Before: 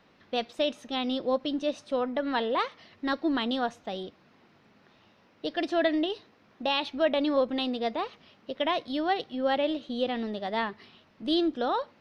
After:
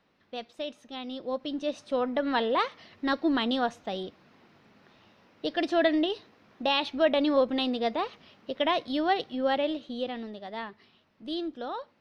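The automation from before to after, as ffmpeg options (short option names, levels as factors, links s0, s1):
-af "volume=1.19,afade=t=in:st=1.12:d=1.02:silence=0.334965,afade=t=out:st=9.21:d=1.16:silence=0.354813"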